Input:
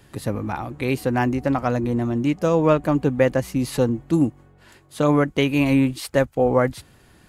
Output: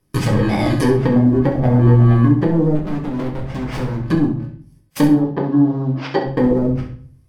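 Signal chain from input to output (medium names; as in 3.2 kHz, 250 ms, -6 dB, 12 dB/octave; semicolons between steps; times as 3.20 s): bit-reversed sample order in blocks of 32 samples; low-pass that closes with the level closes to 320 Hz, closed at -16 dBFS; gate -42 dBFS, range -25 dB; in parallel at 0 dB: peak limiter -21.5 dBFS, peak gain reduction 10 dB; on the sum: waveshaping leveller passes 1; compression, threshold -20 dBFS, peak gain reduction 7.5 dB; 2.75–4.02 s: overload inside the chain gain 30.5 dB; phaser 0.53 Hz, delay 4.9 ms, feedback 28%; 5.08–6.27 s: cabinet simulation 190–5000 Hz, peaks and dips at 240 Hz -5 dB, 860 Hz +5 dB, 2.4 kHz -4 dB; on a send: flutter echo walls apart 11.4 m, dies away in 0.35 s; on the sum: simulated room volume 46 m³, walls mixed, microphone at 0.58 m; trim +3.5 dB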